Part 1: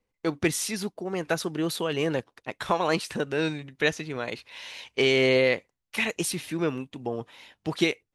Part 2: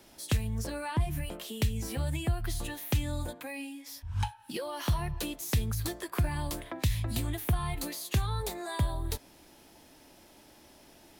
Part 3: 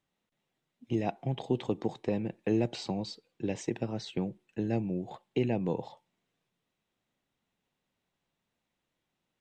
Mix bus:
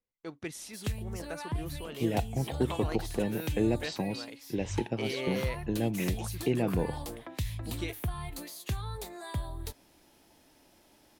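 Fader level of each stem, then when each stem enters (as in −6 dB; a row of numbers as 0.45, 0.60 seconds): −14.5, −5.5, +0.5 decibels; 0.00, 0.55, 1.10 seconds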